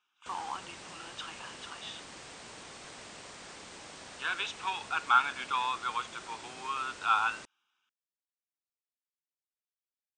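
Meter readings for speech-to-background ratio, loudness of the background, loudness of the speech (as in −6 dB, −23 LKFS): 14.0 dB, −46.5 LKFS, −32.5 LKFS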